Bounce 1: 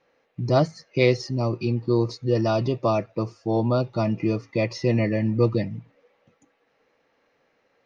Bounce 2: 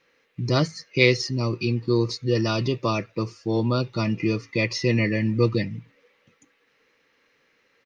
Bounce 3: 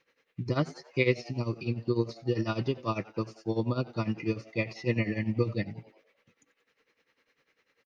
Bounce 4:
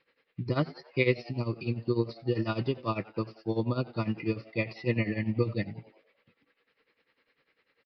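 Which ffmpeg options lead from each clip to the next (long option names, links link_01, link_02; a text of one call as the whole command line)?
ffmpeg -i in.wav -af "firequalizer=gain_entry='entry(460,0);entry(700,-10);entry(1000,0);entry(2000,7)':delay=0.05:min_phase=1" out.wav
ffmpeg -i in.wav -filter_complex "[0:a]tremolo=f=10:d=0.82,acrossover=split=3100[link_01][link_02];[link_02]acompressor=threshold=-46dB:ratio=4:attack=1:release=60[link_03];[link_01][link_03]amix=inputs=2:normalize=0,asplit=5[link_04][link_05][link_06][link_07][link_08];[link_05]adelay=91,afreqshift=110,volume=-21dB[link_09];[link_06]adelay=182,afreqshift=220,volume=-26dB[link_10];[link_07]adelay=273,afreqshift=330,volume=-31.1dB[link_11];[link_08]adelay=364,afreqshift=440,volume=-36.1dB[link_12];[link_04][link_09][link_10][link_11][link_12]amix=inputs=5:normalize=0,volume=-3.5dB" out.wav
ffmpeg -i in.wav -af "aresample=11025,aresample=44100" out.wav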